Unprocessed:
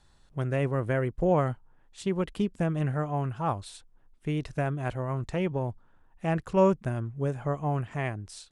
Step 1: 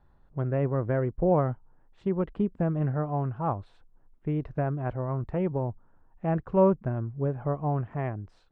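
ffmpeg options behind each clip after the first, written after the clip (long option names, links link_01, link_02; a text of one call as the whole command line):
ffmpeg -i in.wav -af "lowpass=1200,volume=1dB" out.wav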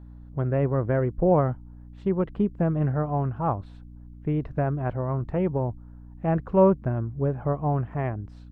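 ffmpeg -i in.wav -af "aeval=exprs='val(0)+0.00501*(sin(2*PI*60*n/s)+sin(2*PI*2*60*n/s)/2+sin(2*PI*3*60*n/s)/3+sin(2*PI*4*60*n/s)/4+sin(2*PI*5*60*n/s)/5)':channel_layout=same,volume=3dB" out.wav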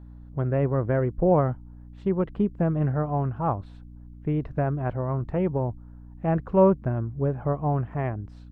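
ffmpeg -i in.wav -af anull out.wav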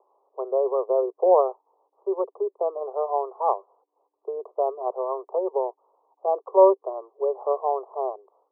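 ffmpeg -i in.wav -af "asuperpass=centerf=670:order=20:qfactor=0.86,volume=5dB" out.wav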